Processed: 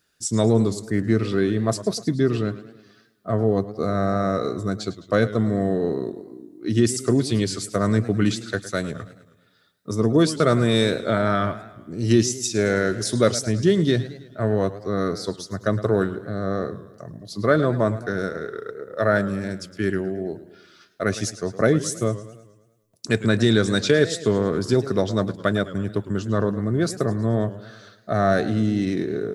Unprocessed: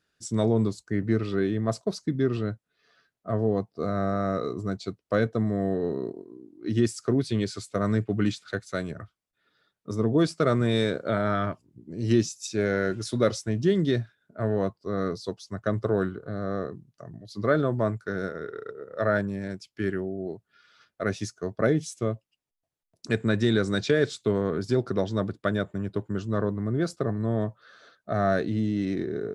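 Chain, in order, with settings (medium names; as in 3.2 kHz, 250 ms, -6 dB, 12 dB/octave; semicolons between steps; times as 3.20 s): treble shelf 6.4 kHz +11.5 dB; modulated delay 107 ms, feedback 52%, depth 147 cents, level -15 dB; trim +4.5 dB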